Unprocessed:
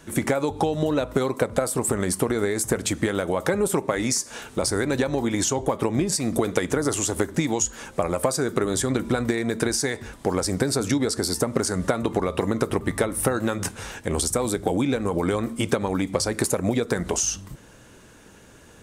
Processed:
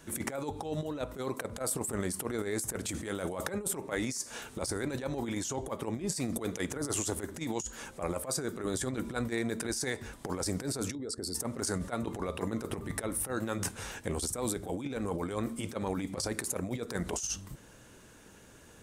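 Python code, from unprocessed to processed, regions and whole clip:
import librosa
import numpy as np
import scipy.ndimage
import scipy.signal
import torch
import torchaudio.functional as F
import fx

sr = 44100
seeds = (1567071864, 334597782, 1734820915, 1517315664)

y = fx.chain(x, sr, fx.peak_eq(hz=8700.0, db=4.5, octaves=1.1),
    fx.over_compress(threshold_db=-30.0, ratio=-1.0), at=(2.89, 3.46))
y = fx.chain(y, sr, fx.envelope_sharpen(power=1.5),
    fx.notch(hz=5800.0, q=15.0),
    fx.level_steps(step_db=16), at=(10.95, 11.35))
y = fx.high_shelf(y, sr, hz=8100.0, db=4.5)
y = fx.over_compress(y, sr, threshold_db=-25.0, ratio=-0.5)
y = y * 10.0 ** (-8.5 / 20.0)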